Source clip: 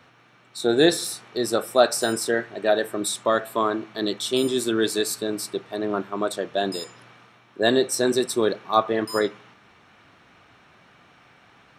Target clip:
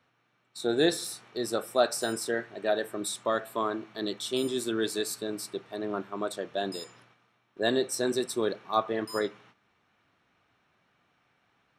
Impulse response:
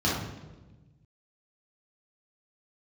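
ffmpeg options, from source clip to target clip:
-af "agate=range=-9dB:threshold=-48dB:ratio=16:detection=peak,volume=-7dB"

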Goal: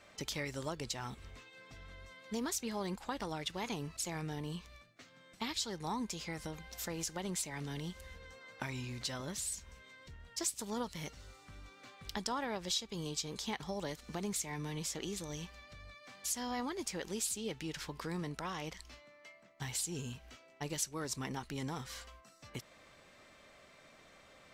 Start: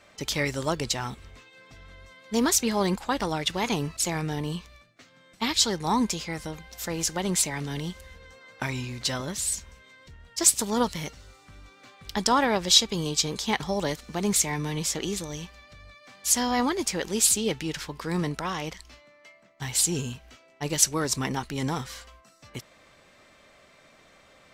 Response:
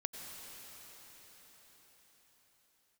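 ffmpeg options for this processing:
-af "acompressor=threshold=-36dB:ratio=2.5,volume=-4dB"

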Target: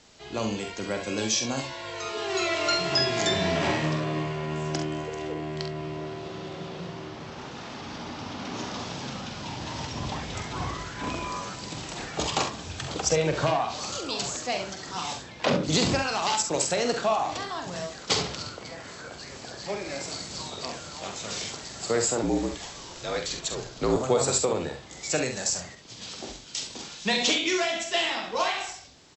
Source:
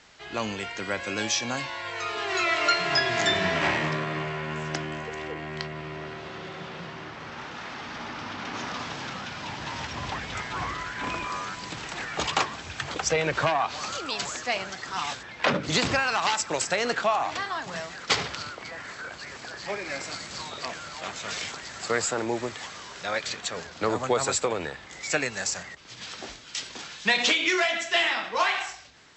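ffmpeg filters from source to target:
ffmpeg -i in.wav -filter_complex "[0:a]equalizer=frequency=1700:width_type=o:width=1.8:gain=-11,aecho=1:1:45|68:0.422|0.335,asettb=1/sr,asplit=3[link_01][link_02][link_03];[link_01]atrim=end=22.234[link_04];[link_02]atrim=start=22.23:end=23.96,asetpts=PTS-STARTPTS,afade=type=in:duration=0.004:curve=qsin,afade=type=out:start_time=1.726:duration=0.004:curve=qsin,afreqshift=-51[link_05];[link_03]atrim=start=23.956[link_06];[link_04][link_05]acrossfade=duration=0.004:curve1=hsin:curve2=qsin[link_07];[link_07][link_06]acrossfade=duration=0.004:curve1=qsin:curve2=hsin,volume=3dB" out.wav

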